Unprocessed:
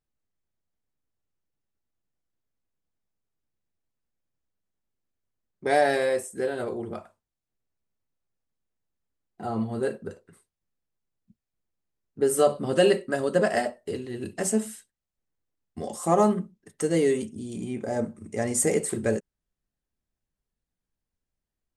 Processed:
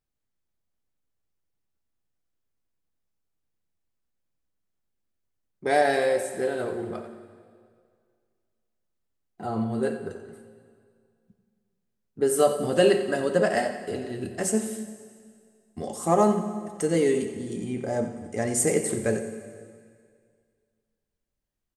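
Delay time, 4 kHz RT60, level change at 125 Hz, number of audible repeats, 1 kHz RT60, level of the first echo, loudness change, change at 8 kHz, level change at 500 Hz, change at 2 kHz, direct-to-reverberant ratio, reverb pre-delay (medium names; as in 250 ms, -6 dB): 89 ms, 1.9 s, +0.5 dB, 2, 2.0 s, -12.5 dB, +0.5 dB, +0.5 dB, +0.5 dB, +0.5 dB, 7.5 dB, 5 ms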